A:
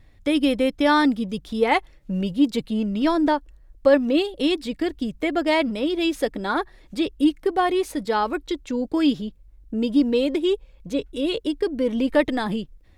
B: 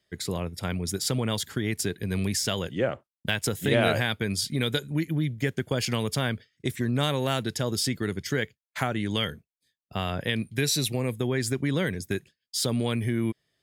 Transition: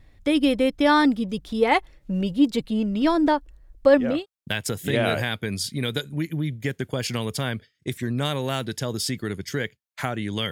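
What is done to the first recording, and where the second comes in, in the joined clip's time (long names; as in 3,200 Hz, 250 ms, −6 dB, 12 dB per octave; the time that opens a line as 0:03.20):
A
0:04.10: continue with B from 0:02.88, crossfade 0.32 s equal-power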